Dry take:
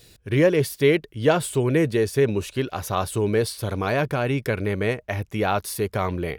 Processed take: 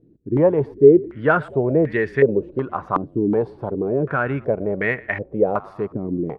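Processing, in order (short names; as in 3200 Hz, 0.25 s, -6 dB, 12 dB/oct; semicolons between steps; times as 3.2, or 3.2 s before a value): resonant low shelf 110 Hz -8 dB, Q 1.5; frequency-shifting echo 0.118 s, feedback 55%, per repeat -37 Hz, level -22.5 dB; stepped low-pass 2.7 Hz 300–1900 Hz; gain -1.5 dB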